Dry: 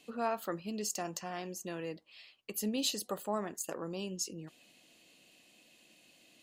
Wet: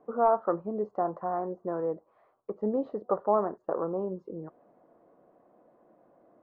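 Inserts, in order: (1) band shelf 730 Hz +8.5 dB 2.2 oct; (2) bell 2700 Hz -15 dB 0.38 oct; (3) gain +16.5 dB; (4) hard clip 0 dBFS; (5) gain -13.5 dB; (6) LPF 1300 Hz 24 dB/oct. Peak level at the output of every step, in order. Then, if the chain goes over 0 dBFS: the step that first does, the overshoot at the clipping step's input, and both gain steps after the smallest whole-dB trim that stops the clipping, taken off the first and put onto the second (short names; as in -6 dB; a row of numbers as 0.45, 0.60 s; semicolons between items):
-13.0, -13.0, +3.5, 0.0, -13.5, -13.0 dBFS; step 3, 3.5 dB; step 3 +12.5 dB, step 5 -9.5 dB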